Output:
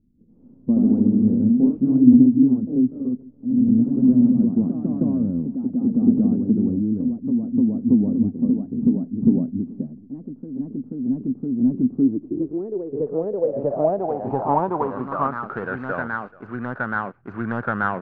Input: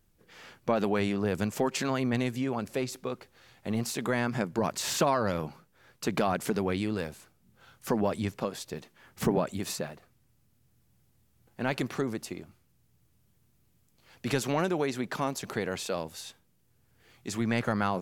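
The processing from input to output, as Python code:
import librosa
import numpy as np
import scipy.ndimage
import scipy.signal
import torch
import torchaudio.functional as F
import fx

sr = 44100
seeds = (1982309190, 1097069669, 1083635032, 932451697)

p1 = scipy.signal.medfilt(x, 25)
p2 = p1 + fx.echo_single(p1, sr, ms=432, db=-22.5, dry=0)
p3 = fx.echo_pitch(p2, sr, ms=117, semitones=1, count=3, db_per_echo=-3.0)
p4 = fx.filter_sweep_lowpass(p3, sr, from_hz=250.0, to_hz=1500.0, start_s=11.86, end_s=15.64, q=7.1)
y = p4 * 10.0 ** (2.0 / 20.0)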